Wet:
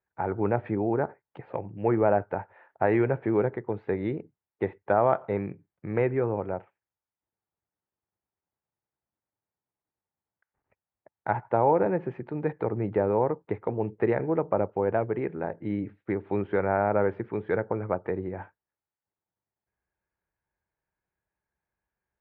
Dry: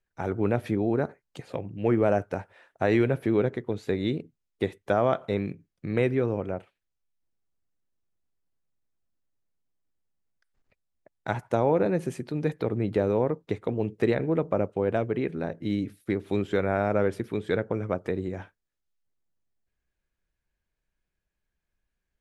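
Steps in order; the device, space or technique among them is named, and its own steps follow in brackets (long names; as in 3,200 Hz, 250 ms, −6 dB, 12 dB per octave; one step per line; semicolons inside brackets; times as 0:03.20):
bass cabinet (loudspeaker in its box 85–2,100 Hz, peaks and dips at 160 Hz −4 dB, 250 Hz −6 dB, 870 Hz +8 dB)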